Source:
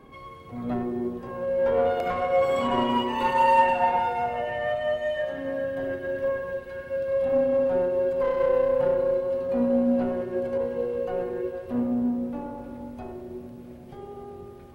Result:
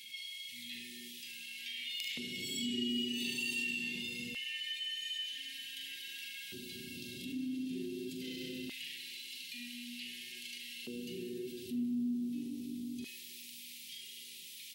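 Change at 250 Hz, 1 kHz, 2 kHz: -10.5 dB, under -40 dB, -7.0 dB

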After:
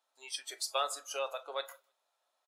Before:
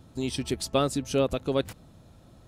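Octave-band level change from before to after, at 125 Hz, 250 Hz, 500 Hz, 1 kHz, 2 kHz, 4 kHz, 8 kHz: under -40 dB, under -35 dB, -12.5 dB, -3.5 dB, -4.0 dB, -3.5 dB, -3.0 dB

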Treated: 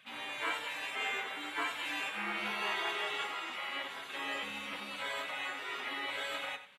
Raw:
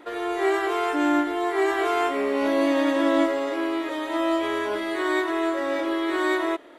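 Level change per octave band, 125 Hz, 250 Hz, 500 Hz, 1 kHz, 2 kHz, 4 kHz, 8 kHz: no reading, -26.5 dB, -22.5 dB, -13.0 dB, -6.5 dB, -2.5 dB, -6.5 dB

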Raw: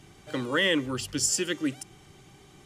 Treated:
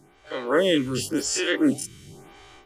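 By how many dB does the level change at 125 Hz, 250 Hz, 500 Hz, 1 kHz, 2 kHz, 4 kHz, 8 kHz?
+3.0 dB, +6.5 dB, +7.5 dB, +5.0 dB, +0.5 dB, +1.0 dB, -1.0 dB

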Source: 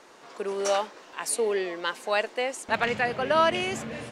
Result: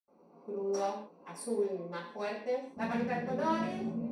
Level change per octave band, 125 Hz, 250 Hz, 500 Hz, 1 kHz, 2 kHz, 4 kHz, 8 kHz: -1.5 dB, 0.0 dB, -7.5 dB, -9.0 dB, -14.5 dB, -17.5 dB, -16.0 dB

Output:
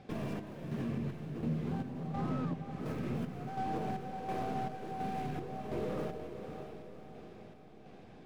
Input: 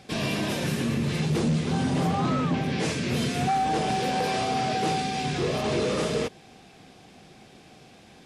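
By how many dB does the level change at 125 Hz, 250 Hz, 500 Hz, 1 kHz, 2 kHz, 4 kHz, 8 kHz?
-11.0 dB, -11.0 dB, -12.0 dB, -12.5 dB, -18.0 dB, -24.0 dB, -25.5 dB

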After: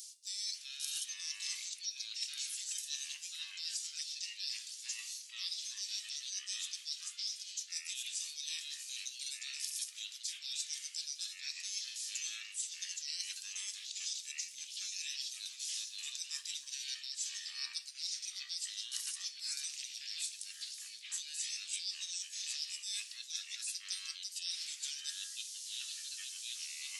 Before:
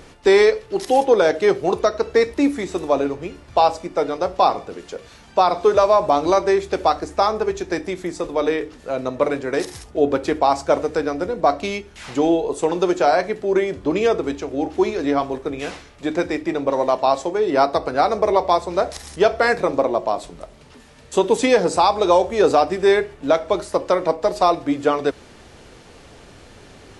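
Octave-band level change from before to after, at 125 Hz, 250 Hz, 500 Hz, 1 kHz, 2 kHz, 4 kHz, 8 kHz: under -40 dB, under -40 dB, under -40 dB, under -40 dB, -21.0 dB, -5.0 dB, +1.0 dB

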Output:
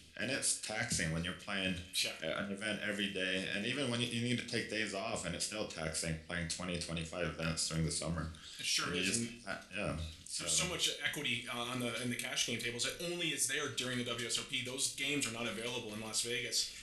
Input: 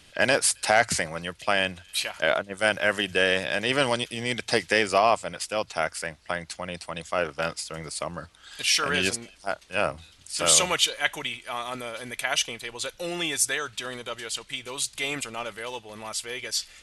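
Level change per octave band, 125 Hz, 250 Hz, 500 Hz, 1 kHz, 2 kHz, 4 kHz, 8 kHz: -2.0 dB, -4.5 dB, -14.0 dB, -18.0 dB, -12.0 dB, -9.0 dB, -9.5 dB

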